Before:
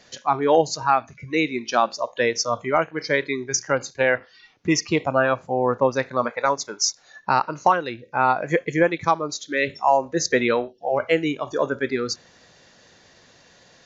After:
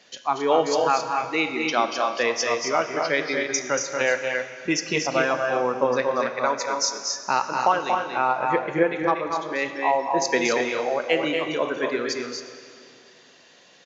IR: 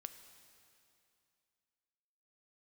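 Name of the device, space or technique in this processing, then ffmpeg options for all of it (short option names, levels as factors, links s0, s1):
stadium PA: -filter_complex "[0:a]asettb=1/sr,asplit=3[s0][s1][s2];[s0]atrim=end=8.214[s3];[s1]atrim=start=8.21:end=10.22,asetpts=PTS-STARTPTS,afade=t=in:d=0.004:c=qsin,afade=t=out:st=2.006:d=0.004:c=qsin,lowpass=f=1900:p=1[s4];[s2]atrim=start=10.216[s5];[s3][s4]acrossfade=d=0.004:c1=hsin:c2=qsin[s6];[s6][s5]acrossfade=d=0.004:c1=qsin:c2=hsin,highpass=200,equalizer=f=2900:t=o:w=0.61:g=6,aecho=1:1:233.2|265.3:0.501|0.447[s7];[1:a]atrim=start_sample=2205[s8];[s7][s8]afir=irnorm=-1:irlink=0,volume=1.26"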